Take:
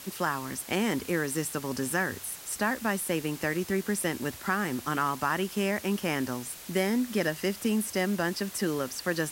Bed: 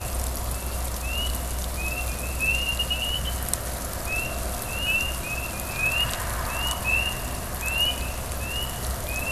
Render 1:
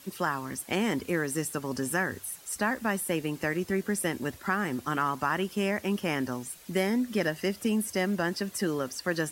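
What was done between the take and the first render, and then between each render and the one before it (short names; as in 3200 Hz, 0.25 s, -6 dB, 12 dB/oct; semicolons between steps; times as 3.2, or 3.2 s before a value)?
denoiser 9 dB, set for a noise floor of -45 dBFS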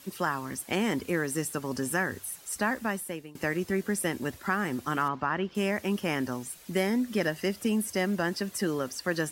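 2.77–3.35 fade out, to -21.5 dB; 5.08–5.55 air absorption 210 m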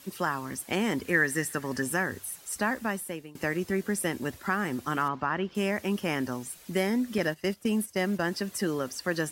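1.06–1.82 bell 1800 Hz +14 dB 0.34 oct; 7.18–8.3 gate -34 dBFS, range -12 dB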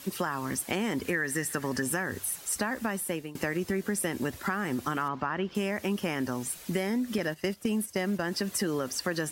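in parallel at -1 dB: limiter -22.5 dBFS, peak gain reduction 10.5 dB; on the sum: compressor, threshold -26 dBFS, peak gain reduction 9 dB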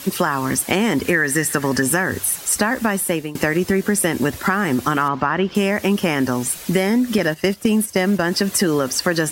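gain +12 dB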